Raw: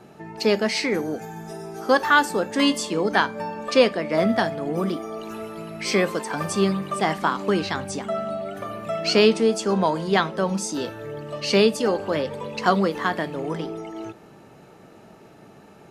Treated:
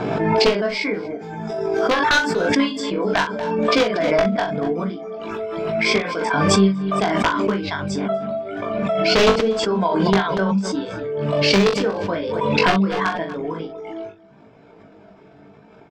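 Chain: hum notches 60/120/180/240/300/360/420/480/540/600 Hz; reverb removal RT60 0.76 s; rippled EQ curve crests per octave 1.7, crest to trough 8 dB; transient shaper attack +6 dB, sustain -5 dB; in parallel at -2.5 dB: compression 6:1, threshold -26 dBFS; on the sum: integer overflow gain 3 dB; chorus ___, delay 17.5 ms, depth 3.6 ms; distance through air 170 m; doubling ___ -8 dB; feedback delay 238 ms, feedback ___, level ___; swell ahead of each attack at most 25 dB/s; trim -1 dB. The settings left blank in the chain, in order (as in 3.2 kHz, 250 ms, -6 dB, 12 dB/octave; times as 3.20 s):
0.82 Hz, 41 ms, 20%, -20.5 dB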